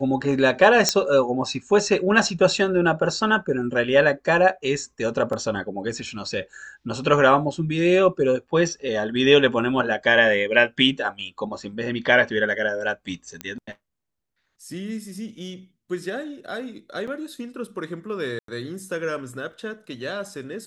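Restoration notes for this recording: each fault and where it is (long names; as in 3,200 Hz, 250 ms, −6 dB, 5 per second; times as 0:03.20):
0:00.89: click −4 dBFS
0:05.33: drop-out 3.5 ms
0:13.41: click −14 dBFS
0:17.07–0:17.08: drop-out 5.3 ms
0:18.39–0:18.48: drop-out 93 ms
0:19.52: drop-out 4.3 ms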